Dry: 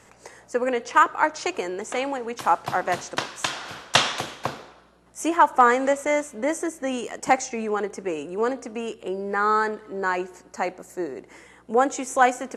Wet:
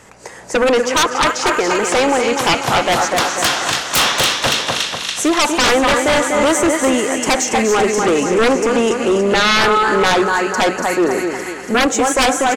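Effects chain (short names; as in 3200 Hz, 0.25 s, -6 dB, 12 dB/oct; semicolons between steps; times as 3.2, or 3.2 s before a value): feedback echo 0.244 s, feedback 49%, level -8.5 dB; AGC gain up to 10.5 dB; on a send: thin delay 0.284 s, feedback 69%, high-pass 2300 Hz, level -6 dB; on the sum: sine folder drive 14 dB, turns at -0.5 dBFS; gain -9 dB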